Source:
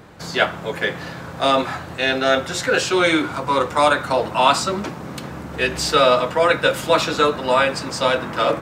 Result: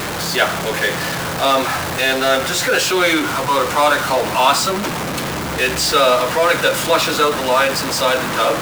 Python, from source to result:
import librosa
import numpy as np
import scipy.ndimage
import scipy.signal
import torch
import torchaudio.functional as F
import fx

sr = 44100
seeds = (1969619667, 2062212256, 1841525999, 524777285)

y = x + 0.5 * 10.0 ** (-16.5 / 20.0) * np.sign(x)
y = fx.low_shelf(y, sr, hz=350.0, db=-5.5)